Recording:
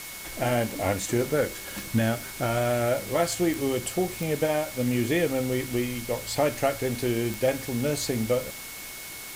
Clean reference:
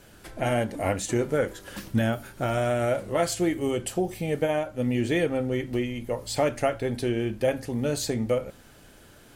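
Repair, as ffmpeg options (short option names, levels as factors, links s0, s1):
-af "adeclick=t=4,bandreject=f=2200:w=30,afwtdn=0.011"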